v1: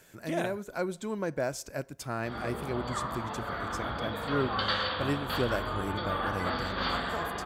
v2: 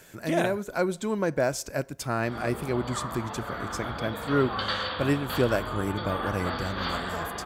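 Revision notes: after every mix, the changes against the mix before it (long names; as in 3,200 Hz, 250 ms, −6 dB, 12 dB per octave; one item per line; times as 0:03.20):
speech +6.0 dB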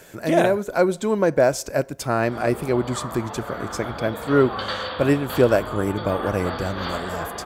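speech +4.0 dB
master: add parametric band 540 Hz +5 dB 1.6 octaves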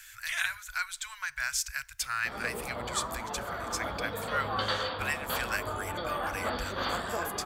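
speech: add inverse Chebyshev band-stop filter 210–450 Hz, stop band 80 dB
background: send −10.0 dB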